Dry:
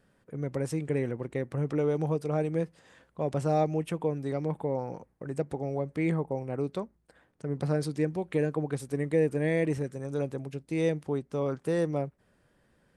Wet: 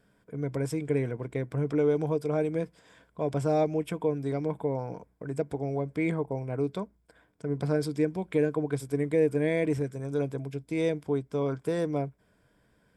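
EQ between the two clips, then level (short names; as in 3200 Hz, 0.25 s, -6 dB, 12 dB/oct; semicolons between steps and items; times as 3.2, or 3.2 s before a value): ripple EQ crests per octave 1.7, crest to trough 7 dB; 0.0 dB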